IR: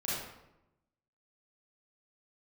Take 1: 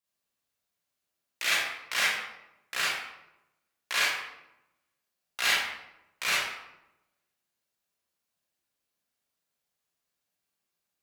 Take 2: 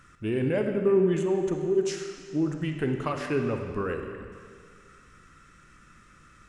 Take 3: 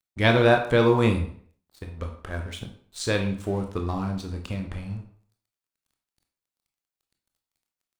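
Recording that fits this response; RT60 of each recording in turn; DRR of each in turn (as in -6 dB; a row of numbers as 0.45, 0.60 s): 1; 0.90, 2.0, 0.55 s; -9.0, 4.0, 3.5 dB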